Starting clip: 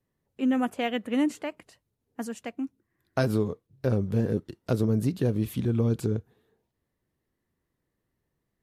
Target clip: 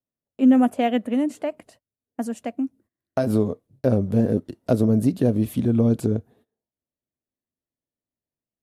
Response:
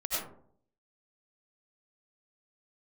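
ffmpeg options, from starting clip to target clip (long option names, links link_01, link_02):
-filter_complex "[0:a]agate=range=-20dB:threshold=-58dB:ratio=16:detection=peak,equalizer=frequency=100:width_type=o:width=0.67:gain=3,equalizer=frequency=250:width_type=o:width=0.67:gain=9,equalizer=frequency=630:width_type=o:width=0.67:gain=11,equalizer=frequency=10000:width_type=o:width=0.67:gain=5,asplit=3[link_01][link_02][link_03];[link_01]afade=type=out:start_time=1.03:duration=0.02[link_04];[link_02]acompressor=threshold=-23dB:ratio=2,afade=type=in:start_time=1.03:duration=0.02,afade=type=out:start_time=3.26:duration=0.02[link_05];[link_03]afade=type=in:start_time=3.26:duration=0.02[link_06];[link_04][link_05][link_06]amix=inputs=3:normalize=0"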